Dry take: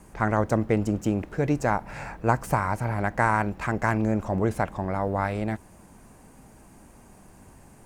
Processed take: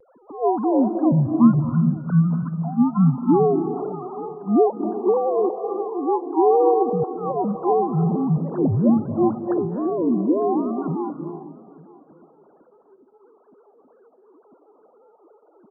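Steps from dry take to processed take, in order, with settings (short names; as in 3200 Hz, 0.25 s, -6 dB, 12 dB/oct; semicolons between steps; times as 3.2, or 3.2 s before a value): sine-wave speech; vibrato 4.3 Hz 82 cents; echo 0.45 s -22 dB; on a send at -8 dB: reverb RT60 0.65 s, pre-delay 85 ms; on the sum: speed mistake 15 ips tape played at 7.5 ips; gain +5 dB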